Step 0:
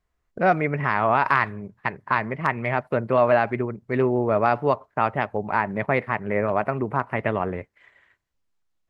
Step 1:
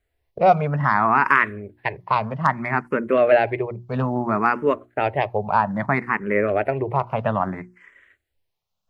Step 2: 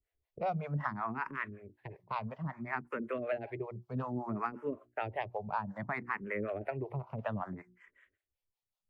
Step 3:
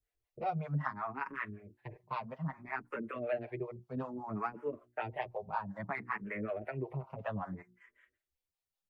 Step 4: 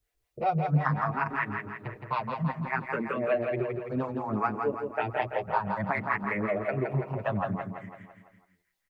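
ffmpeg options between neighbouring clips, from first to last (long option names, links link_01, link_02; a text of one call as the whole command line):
ffmpeg -i in.wav -filter_complex "[0:a]bandreject=frequency=60:width_type=h:width=6,bandreject=frequency=120:width_type=h:width=6,bandreject=frequency=180:width_type=h:width=6,bandreject=frequency=240:width_type=h:width=6,bandreject=frequency=300:width_type=h:width=6,bandreject=frequency=360:width_type=h:width=6,asplit=2[link_01][link_02];[link_02]afreqshift=0.61[link_03];[link_01][link_03]amix=inputs=2:normalize=1,volume=5.5dB" out.wav
ffmpeg -i in.wav -filter_complex "[0:a]acrossover=split=320[link_01][link_02];[link_02]acompressor=threshold=-20dB:ratio=6[link_03];[link_01][link_03]amix=inputs=2:normalize=0,acrossover=split=460[link_04][link_05];[link_04]aeval=exprs='val(0)*(1-1/2+1/2*cos(2*PI*5.3*n/s))':channel_layout=same[link_06];[link_05]aeval=exprs='val(0)*(1-1/2-1/2*cos(2*PI*5.3*n/s))':channel_layout=same[link_07];[link_06][link_07]amix=inputs=2:normalize=0,volume=-9dB" out.wav
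ffmpeg -i in.wav -filter_complex "[0:a]asplit=2[link_01][link_02];[link_02]adelay=6.6,afreqshift=0.65[link_03];[link_01][link_03]amix=inputs=2:normalize=1,volume=1.5dB" out.wav
ffmpeg -i in.wav -af "aecho=1:1:167|334|501|668|835|1002:0.531|0.271|0.138|0.0704|0.0359|0.0183,volume=8dB" out.wav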